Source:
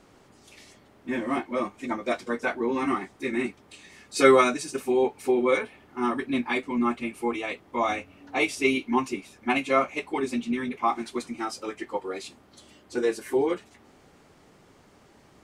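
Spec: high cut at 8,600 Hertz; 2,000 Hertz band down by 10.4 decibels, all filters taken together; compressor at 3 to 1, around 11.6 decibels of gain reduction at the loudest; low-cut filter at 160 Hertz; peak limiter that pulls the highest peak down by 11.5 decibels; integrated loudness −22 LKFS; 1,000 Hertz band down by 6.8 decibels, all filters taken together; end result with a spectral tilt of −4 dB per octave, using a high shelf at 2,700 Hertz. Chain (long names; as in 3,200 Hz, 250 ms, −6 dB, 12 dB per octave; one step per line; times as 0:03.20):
high-pass filter 160 Hz
low-pass filter 8,600 Hz
parametric band 1,000 Hz −5.5 dB
parametric band 2,000 Hz −8 dB
high-shelf EQ 2,700 Hz −7.5 dB
downward compressor 3 to 1, threshold −30 dBFS
level +18 dB
brickwall limiter −12.5 dBFS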